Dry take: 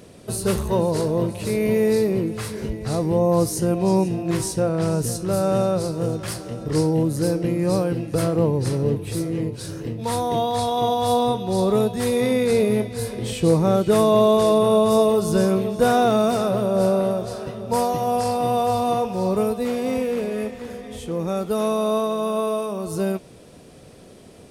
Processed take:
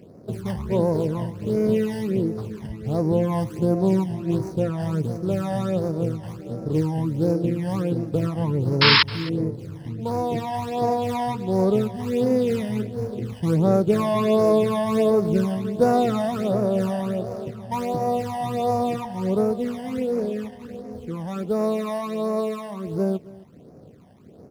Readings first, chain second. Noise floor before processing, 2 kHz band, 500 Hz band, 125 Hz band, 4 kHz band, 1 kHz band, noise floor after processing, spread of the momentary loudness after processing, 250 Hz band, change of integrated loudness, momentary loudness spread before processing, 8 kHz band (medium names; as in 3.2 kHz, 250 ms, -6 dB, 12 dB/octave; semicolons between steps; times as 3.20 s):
-45 dBFS, +4.5 dB, -3.5 dB, -0.5 dB, +4.5 dB, -3.5 dB, -45 dBFS, 11 LU, -1.0 dB, -2.0 dB, 10 LU, -13.0 dB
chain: median filter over 25 samples; phase shifter stages 12, 1.4 Hz, lowest notch 400–3200 Hz; painted sound noise, 8.81–9.03 s, 870–5400 Hz -15 dBFS; high-pass 93 Hz; delay 266 ms -20.5 dB